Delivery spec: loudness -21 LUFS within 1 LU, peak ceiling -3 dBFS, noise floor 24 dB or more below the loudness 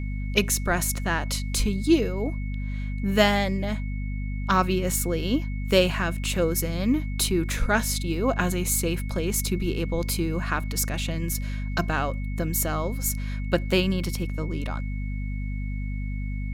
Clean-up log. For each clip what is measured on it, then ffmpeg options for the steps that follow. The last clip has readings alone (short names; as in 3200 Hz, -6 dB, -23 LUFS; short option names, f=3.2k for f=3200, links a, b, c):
hum 50 Hz; harmonics up to 250 Hz; hum level -27 dBFS; steady tone 2200 Hz; tone level -44 dBFS; loudness -26.0 LUFS; peak -5.0 dBFS; loudness target -21.0 LUFS
-> -af "bandreject=f=50:t=h:w=6,bandreject=f=100:t=h:w=6,bandreject=f=150:t=h:w=6,bandreject=f=200:t=h:w=6,bandreject=f=250:t=h:w=6"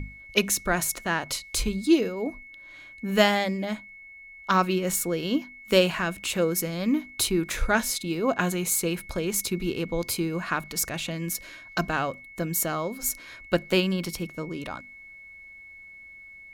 hum none; steady tone 2200 Hz; tone level -44 dBFS
-> -af "bandreject=f=2.2k:w=30"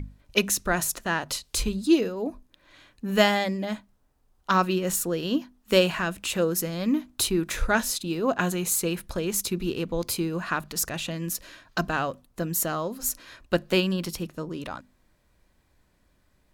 steady tone none; loudness -26.5 LUFS; peak -6.0 dBFS; loudness target -21.0 LUFS
-> -af "volume=5.5dB,alimiter=limit=-3dB:level=0:latency=1"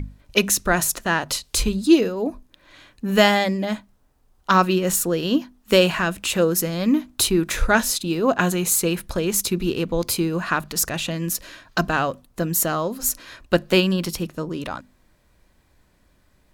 loudness -21.0 LUFS; peak -3.0 dBFS; noise floor -61 dBFS